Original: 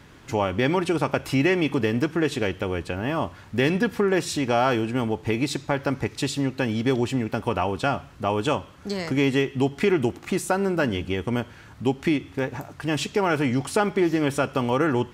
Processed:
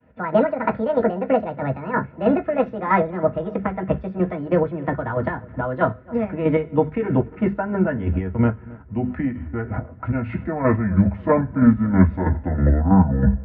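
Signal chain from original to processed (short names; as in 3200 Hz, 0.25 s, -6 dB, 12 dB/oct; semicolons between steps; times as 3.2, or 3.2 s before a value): speed glide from 172% -> 53%; expander -40 dBFS; LPF 1700 Hz 24 dB/oct; notches 50/100/150/200/250 Hz; chopper 3.1 Hz, depth 60%, duty 35%; darkening echo 0.27 s, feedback 45%, low-pass 1200 Hz, level -21 dB; reverb RT60 0.10 s, pre-delay 3 ms, DRR 3 dB; gain -2 dB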